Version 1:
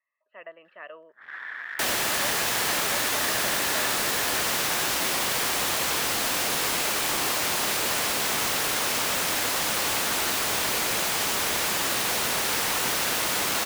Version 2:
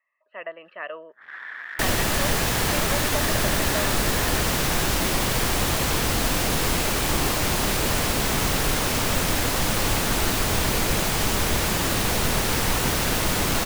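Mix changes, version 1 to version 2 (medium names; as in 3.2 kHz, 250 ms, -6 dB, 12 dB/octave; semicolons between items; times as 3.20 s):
speech +8.0 dB; second sound: remove high-pass 720 Hz 6 dB/octave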